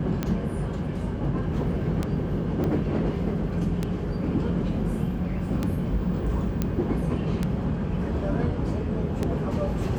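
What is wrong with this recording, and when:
scratch tick 33 1/3 rpm −13 dBFS
0:02.64: click −18 dBFS
0:06.62: click −12 dBFS

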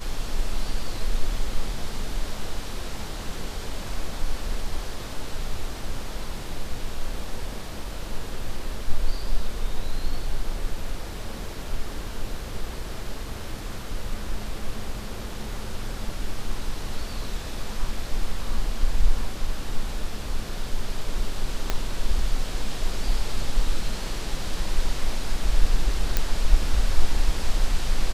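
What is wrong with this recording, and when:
0:21.70: click −9 dBFS
0:26.17: click −6 dBFS

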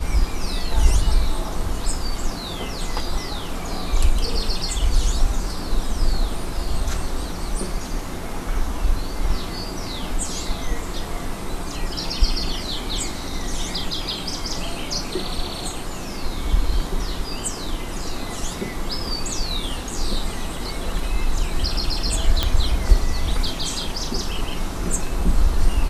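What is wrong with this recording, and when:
0:22.43: click −5 dBFS

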